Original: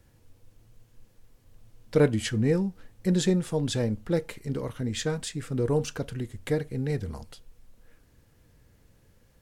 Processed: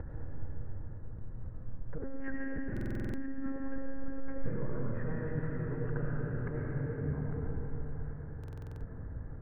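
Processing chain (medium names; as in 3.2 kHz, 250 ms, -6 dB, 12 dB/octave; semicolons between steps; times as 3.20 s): steep low-pass 1.7 kHz 48 dB/octave; gate with hold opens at -51 dBFS; bass shelf 150 Hz +10.5 dB; upward compressor, threshold -38 dBFS; peak limiter -32 dBFS, peak gain reduction 24.5 dB; slow attack 408 ms; compression 6:1, threshold -51 dBFS, peak gain reduction 15.5 dB; algorithmic reverb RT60 5 s, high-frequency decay 0.85×, pre-delay 55 ms, DRR -5 dB; 1.98–4.46 s: monotone LPC vocoder at 8 kHz 270 Hz; buffer glitch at 2.72/8.39 s, samples 2048, times 8; trim +12 dB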